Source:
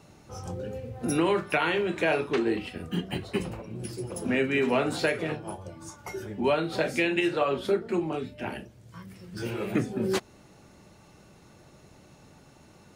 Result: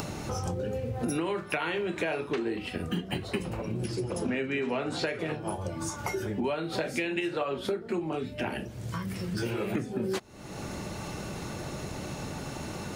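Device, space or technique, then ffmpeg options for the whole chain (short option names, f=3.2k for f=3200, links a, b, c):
upward and downward compression: -filter_complex "[0:a]asettb=1/sr,asplit=3[a][b][c];[a]atrim=end=3.844[d];[b]atrim=start=3.84:end=5.19,asetpts=PTS-STARTPTS,afade=t=in:d=0.004:c=qsin,afade=t=out:st=1.346:d=0.004:c=qsin,lowpass=7.4k[e];[c]atrim=start=5.186[f];[d][e]acrossfade=d=0.004:c1=hsin:c2=qsin[g];[g][f]acrossfade=d=0.004:c1=qsin:c2=hsin,acompressor=mode=upward:threshold=-34dB:ratio=2.5,acompressor=threshold=-36dB:ratio=6,volume=7.5dB"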